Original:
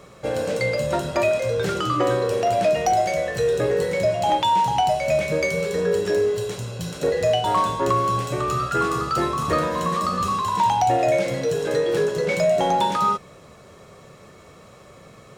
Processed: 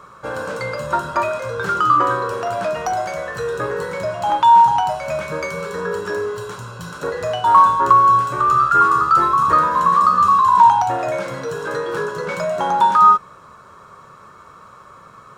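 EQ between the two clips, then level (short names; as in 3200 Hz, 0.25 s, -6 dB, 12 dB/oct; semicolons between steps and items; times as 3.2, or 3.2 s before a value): band shelf 1200 Hz +14.5 dB 1 oct; -3.5 dB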